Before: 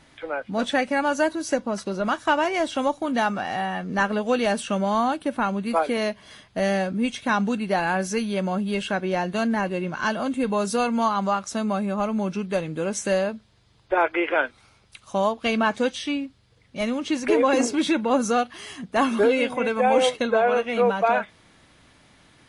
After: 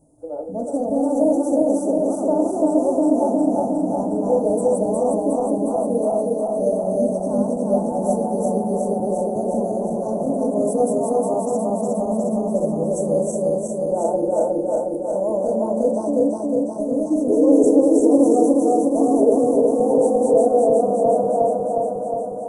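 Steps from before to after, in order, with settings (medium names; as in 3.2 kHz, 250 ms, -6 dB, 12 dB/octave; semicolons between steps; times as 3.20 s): backward echo that repeats 180 ms, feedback 84%, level 0 dB; elliptic band-stop 640–8200 Hz, stop band 60 dB; bass shelf 140 Hz -6.5 dB; FDN reverb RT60 0.44 s, low-frequency decay 1×, high-frequency decay 0.3×, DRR 4.5 dB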